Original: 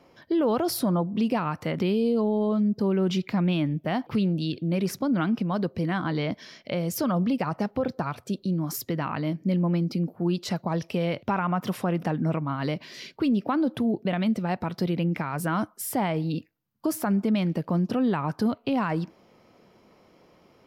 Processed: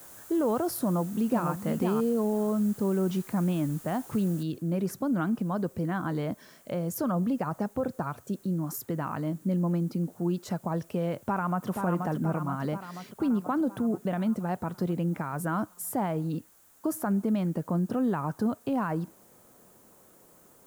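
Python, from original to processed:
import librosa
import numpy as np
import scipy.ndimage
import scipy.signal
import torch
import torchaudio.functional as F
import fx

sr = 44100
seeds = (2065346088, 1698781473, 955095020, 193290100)

y = fx.echo_throw(x, sr, start_s=0.81, length_s=0.69, ms=500, feedback_pct=10, wet_db=-4.5)
y = fx.noise_floor_step(y, sr, seeds[0], at_s=4.43, before_db=-45, after_db=-56, tilt_db=0.0)
y = fx.echo_throw(y, sr, start_s=11.22, length_s=0.47, ms=480, feedback_pct=65, wet_db=-5.0)
y = fx.band_shelf(y, sr, hz=3300.0, db=-9.5, octaves=1.7)
y = y * 10.0 ** (-3.0 / 20.0)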